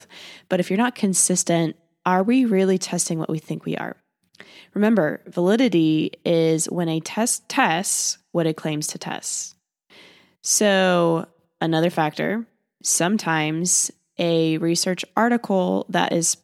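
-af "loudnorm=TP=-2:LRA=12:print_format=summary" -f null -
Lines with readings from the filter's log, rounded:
Input Integrated:    -21.0 LUFS
Input True Peak:      -3.1 dBTP
Input LRA:             1.6 LU
Input Threshold:     -31.4 LUFS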